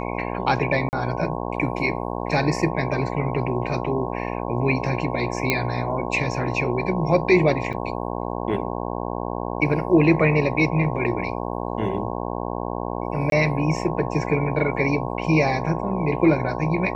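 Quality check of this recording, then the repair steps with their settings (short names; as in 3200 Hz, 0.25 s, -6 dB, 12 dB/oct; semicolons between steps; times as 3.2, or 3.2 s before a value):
buzz 60 Hz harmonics 18 -28 dBFS
0.89–0.93 gap 39 ms
5.5 pop -5 dBFS
7.73–7.74 gap 6 ms
13.3–13.32 gap 22 ms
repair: de-click; de-hum 60 Hz, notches 18; interpolate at 0.89, 39 ms; interpolate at 7.73, 6 ms; interpolate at 13.3, 22 ms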